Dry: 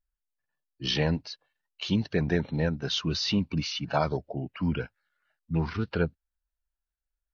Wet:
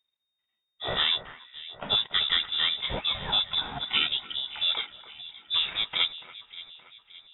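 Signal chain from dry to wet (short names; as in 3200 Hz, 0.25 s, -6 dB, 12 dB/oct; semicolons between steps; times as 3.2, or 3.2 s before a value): spectral whitening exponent 0.6; inverted band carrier 3700 Hz; echo with dull and thin repeats by turns 0.286 s, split 2000 Hz, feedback 68%, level -13 dB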